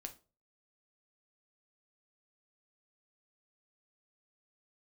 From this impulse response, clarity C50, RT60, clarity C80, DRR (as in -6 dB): 14.5 dB, 0.35 s, 21.5 dB, 5.0 dB